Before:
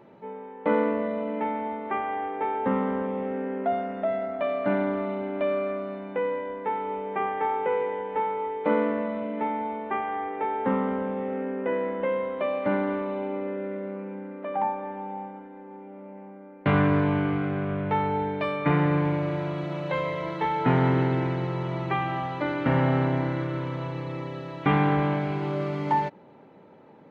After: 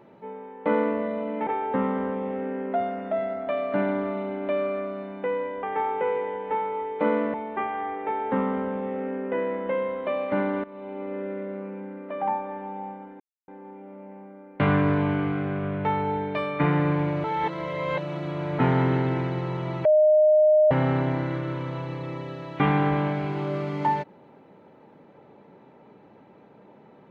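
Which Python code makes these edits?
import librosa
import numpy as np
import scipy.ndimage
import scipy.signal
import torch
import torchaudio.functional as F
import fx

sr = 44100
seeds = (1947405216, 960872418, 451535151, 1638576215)

y = fx.edit(x, sr, fx.cut(start_s=1.47, length_s=0.92),
    fx.cut(start_s=6.55, length_s=0.73),
    fx.cut(start_s=8.99, length_s=0.69),
    fx.fade_in_from(start_s=12.98, length_s=0.58, floor_db=-17.5),
    fx.insert_silence(at_s=15.54, length_s=0.28),
    fx.reverse_span(start_s=19.3, length_s=1.35),
    fx.bleep(start_s=21.91, length_s=0.86, hz=614.0, db=-14.0), tone=tone)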